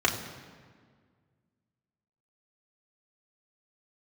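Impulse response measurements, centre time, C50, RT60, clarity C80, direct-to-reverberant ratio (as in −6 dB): 29 ms, 8.5 dB, 1.8 s, 9.5 dB, −2.0 dB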